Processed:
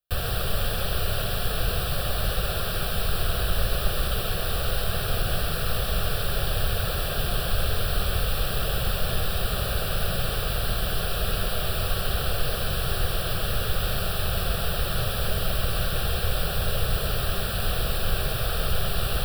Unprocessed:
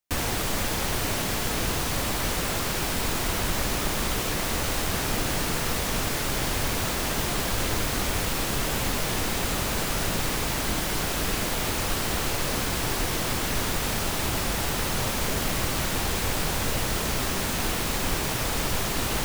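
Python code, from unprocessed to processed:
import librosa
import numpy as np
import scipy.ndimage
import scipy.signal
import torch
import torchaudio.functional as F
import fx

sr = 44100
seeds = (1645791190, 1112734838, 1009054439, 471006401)

y = fx.low_shelf(x, sr, hz=170.0, db=5.5)
y = fx.fixed_phaser(y, sr, hz=1400.0, stages=8)
y = y + 10.0 ** (-5.5 / 20.0) * np.pad(y, (int(133 * sr / 1000.0), 0))[:len(y)]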